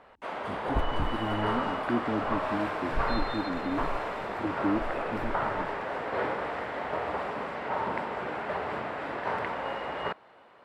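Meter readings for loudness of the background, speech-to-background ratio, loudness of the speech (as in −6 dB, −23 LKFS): −32.5 LKFS, −2.5 dB, −35.0 LKFS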